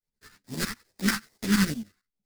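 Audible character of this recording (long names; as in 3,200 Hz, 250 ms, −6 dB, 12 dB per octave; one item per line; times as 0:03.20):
aliases and images of a low sample rate 3,200 Hz, jitter 20%
phaser sweep stages 2, 2.4 Hz, lowest notch 570–1,400 Hz
tremolo saw up 11 Hz, depth 85%
a shimmering, thickened sound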